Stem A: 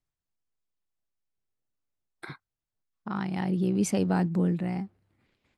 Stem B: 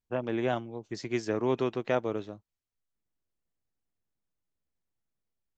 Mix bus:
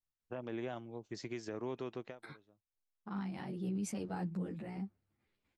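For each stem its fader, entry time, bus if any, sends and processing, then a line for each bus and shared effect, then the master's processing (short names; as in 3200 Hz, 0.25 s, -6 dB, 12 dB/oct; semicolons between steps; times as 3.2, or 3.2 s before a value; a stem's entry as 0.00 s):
-7.5 dB, 0.00 s, no send, ensemble effect
-6.0 dB, 0.20 s, no send, compressor 5:1, threshold -30 dBFS, peak gain reduction 8.5 dB; auto duck -21 dB, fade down 0.20 s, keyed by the first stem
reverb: off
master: limiter -30.5 dBFS, peak gain reduction 6.5 dB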